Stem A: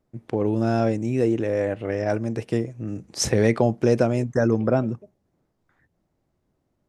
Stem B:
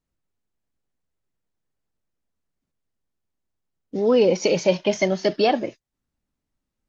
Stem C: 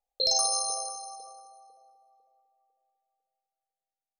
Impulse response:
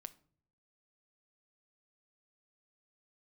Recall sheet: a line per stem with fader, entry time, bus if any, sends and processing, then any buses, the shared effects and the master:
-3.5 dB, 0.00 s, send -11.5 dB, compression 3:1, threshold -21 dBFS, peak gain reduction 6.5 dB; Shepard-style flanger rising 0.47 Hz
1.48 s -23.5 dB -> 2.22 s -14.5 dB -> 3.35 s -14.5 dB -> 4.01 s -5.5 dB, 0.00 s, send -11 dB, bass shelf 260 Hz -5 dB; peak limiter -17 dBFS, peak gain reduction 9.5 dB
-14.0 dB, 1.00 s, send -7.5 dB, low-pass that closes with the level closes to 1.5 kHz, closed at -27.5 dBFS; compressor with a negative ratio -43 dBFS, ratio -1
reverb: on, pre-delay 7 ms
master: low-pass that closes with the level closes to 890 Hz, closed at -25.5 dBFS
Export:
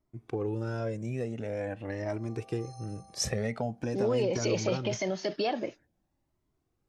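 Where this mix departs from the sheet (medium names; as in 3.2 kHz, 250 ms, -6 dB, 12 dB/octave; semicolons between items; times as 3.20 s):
stem C: entry 1.00 s -> 1.70 s; master: missing low-pass that closes with the level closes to 890 Hz, closed at -25.5 dBFS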